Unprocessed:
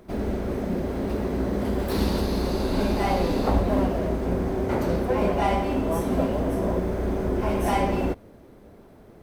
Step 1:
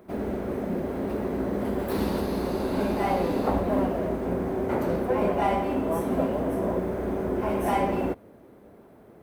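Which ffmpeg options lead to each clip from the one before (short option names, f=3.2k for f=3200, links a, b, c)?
-af "highpass=f=170:p=1,equalizer=f=5.1k:w=0.73:g=-8.5"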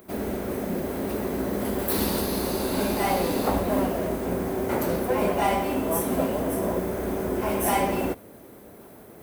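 -af "areverse,acompressor=mode=upward:threshold=-41dB:ratio=2.5,areverse,crystalizer=i=4:c=0"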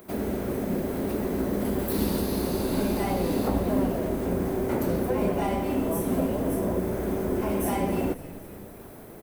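-filter_complex "[0:a]acrossover=split=430[a][b];[b]acompressor=threshold=-39dB:ratio=2[c];[a][c]amix=inputs=2:normalize=0,asplit=7[d][e][f][g][h][i][j];[e]adelay=261,afreqshift=-88,volume=-16dB[k];[f]adelay=522,afreqshift=-176,volume=-20.2dB[l];[g]adelay=783,afreqshift=-264,volume=-24.3dB[m];[h]adelay=1044,afreqshift=-352,volume=-28.5dB[n];[i]adelay=1305,afreqshift=-440,volume=-32.6dB[o];[j]adelay=1566,afreqshift=-528,volume=-36.8dB[p];[d][k][l][m][n][o][p]amix=inputs=7:normalize=0,volume=1.5dB"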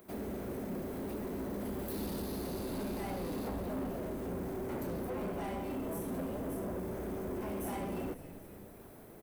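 -af "asoftclip=type=tanh:threshold=-24.5dB,volume=-8.5dB"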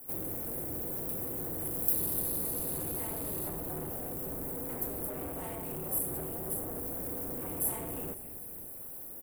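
-af "aeval=exprs='val(0)*sin(2*PI*110*n/s)':c=same,aexciter=amount=10.9:drive=2.9:freq=7.8k"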